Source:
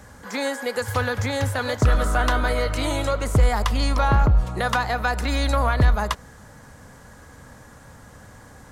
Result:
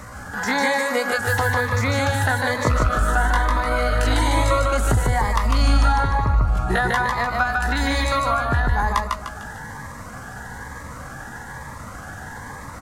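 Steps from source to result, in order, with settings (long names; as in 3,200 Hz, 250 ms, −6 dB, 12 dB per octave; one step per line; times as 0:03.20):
flat-topped bell 1,200 Hz +8.5 dB
downward compressor 10 to 1, threshold −23 dBFS, peak gain reduction 13.5 dB
tempo change 0.68×
repeating echo 150 ms, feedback 44%, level −3 dB
phaser whose notches keep moving one way rising 1.1 Hz
level +7 dB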